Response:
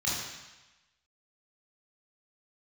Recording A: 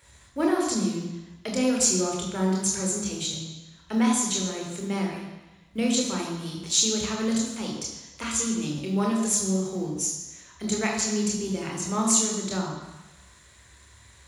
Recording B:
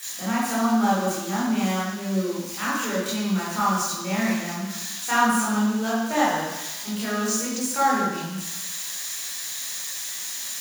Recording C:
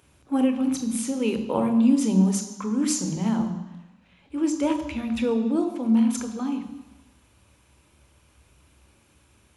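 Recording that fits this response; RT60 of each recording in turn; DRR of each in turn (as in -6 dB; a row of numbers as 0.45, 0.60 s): B; 1.1, 1.1, 1.1 s; -0.5, -7.5, 7.5 dB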